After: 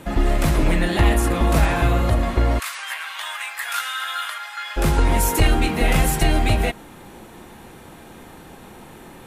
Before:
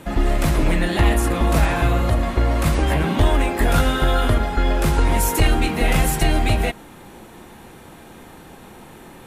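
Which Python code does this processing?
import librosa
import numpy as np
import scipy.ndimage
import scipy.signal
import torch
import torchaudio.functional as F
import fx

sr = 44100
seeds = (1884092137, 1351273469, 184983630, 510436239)

y = fx.highpass(x, sr, hz=1200.0, slope=24, at=(2.58, 4.76), fade=0.02)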